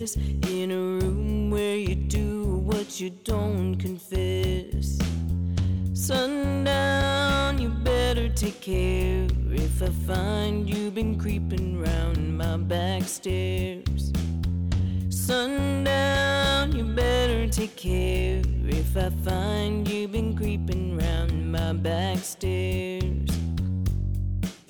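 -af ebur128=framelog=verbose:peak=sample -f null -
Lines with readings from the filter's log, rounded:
Integrated loudness:
  I:         -26.2 LUFS
  Threshold: -36.2 LUFS
Loudness range:
  LRA:         3.3 LU
  Threshold: -46.1 LUFS
  LRA low:   -27.5 LUFS
  LRA high:  -24.2 LUFS
Sample peak:
  Peak:      -17.0 dBFS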